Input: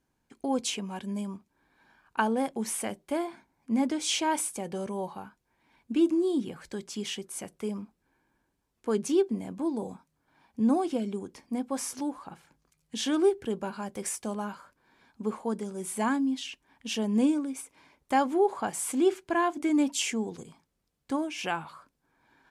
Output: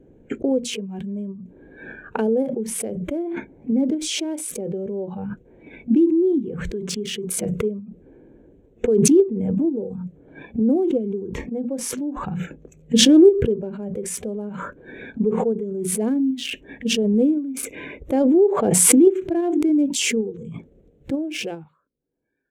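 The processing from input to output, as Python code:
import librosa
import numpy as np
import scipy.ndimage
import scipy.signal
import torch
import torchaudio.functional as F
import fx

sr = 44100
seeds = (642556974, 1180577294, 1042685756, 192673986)

p1 = fx.wiener(x, sr, points=9)
p2 = fx.low_shelf_res(p1, sr, hz=700.0, db=13.5, q=3.0)
p3 = fx.level_steps(p2, sr, step_db=11)
p4 = p2 + (p3 * librosa.db_to_amplitude(0.0))
p5 = fx.hum_notches(p4, sr, base_hz=60, count=4)
p6 = fx.noise_reduce_blind(p5, sr, reduce_db=18)
p7 = fx.pre_swell(p6, sr, db_per_s=20.0)
y = p7 * librosa.db_to_amplitude(-14.5)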